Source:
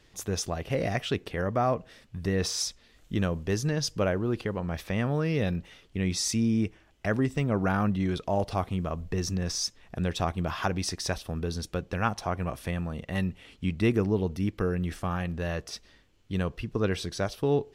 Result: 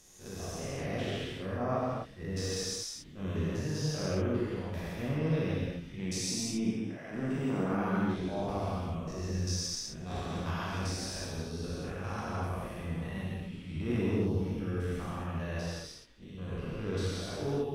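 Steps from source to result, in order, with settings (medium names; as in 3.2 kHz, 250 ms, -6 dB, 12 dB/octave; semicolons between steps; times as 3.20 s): spectrogram pixelated in time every 200 ms; 5.99–8.18 s: high-pass 120 Hz 24 dB/octave; transient shaper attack -11 dB, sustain +3 dB; gated-style reverb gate 290 ms flat, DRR -5 dB; trim -7.5 dB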